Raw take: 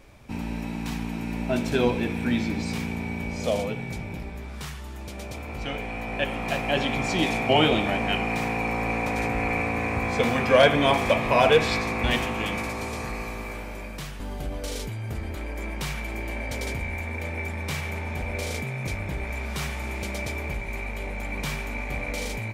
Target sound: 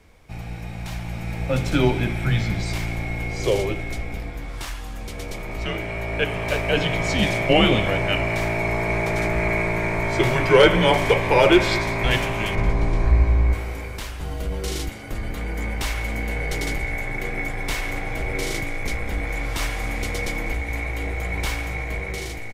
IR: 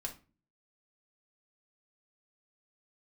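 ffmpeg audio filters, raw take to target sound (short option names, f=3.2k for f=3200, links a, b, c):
-filter_complex "[0:a]asettb=1/sr,asplit=3[a][b][c];[a]atrim=end=12.554[d];[b]atrim=start=12.55:end=13.53,asetpts=PTS-STARTPTS,afade=t=in:d=0.004:c=qsin,afade=t=out:st=0.976:d=0.004:c=qsin,aemphasis=mode=reproduction:type=riaa[e];[c]atrim=start=13.526[f];[d][e]acrossfade=d=0.004:c1=hsin:c2=qsin[g];[g][f]acrossfade=d=0.004:c1=qsin:c2=hsin,dynaudnorm=f=330:g=7:m=6.5dB,afreqshift=-110,asplit=2[h][i];[i]aecho=0:1:199:0.112[j];[h][j]amix=inputs=2:normalize=0,volume=-1.5dB"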